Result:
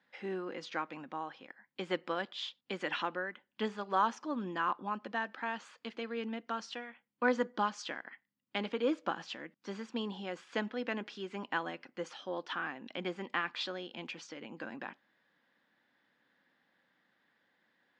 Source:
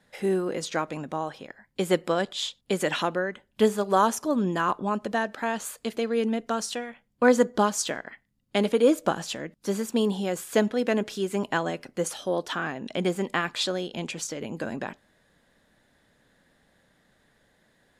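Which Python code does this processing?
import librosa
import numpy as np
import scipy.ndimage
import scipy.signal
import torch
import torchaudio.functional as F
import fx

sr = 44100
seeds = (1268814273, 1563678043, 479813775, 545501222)

y = fx.cabinet(x, sr, low_hz=300.0, low_slope=12, high_hz=4500.0, hz=(420.0, 630.0, 3900.0), db=(-9, -9, -5))
y = F.gain(torch.from_numpy(y), -6.0).numpy()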